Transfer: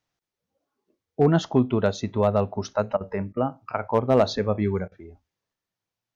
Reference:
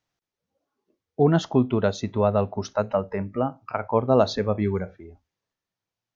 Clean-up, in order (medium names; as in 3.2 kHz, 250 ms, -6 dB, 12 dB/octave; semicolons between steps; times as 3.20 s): clip repair -9 dBFS; interpolate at 2.97/3.33/4.88 s, 36 ms